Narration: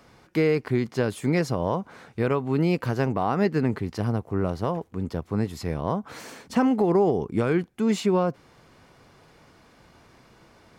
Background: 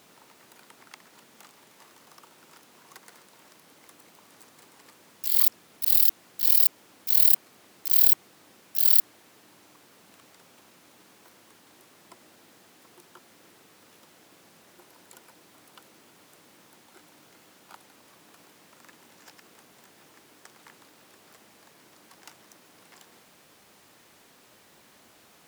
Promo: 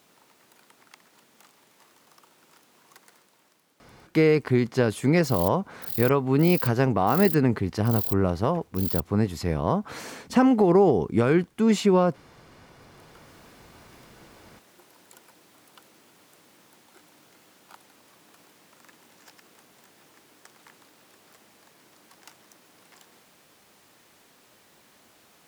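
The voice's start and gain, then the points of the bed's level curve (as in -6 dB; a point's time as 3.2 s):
3.80 s, +2.5 dB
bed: 3.03 s -4 dB
3.77 s -12 dB
12.66 s -12 dB
13.33 s -1 dB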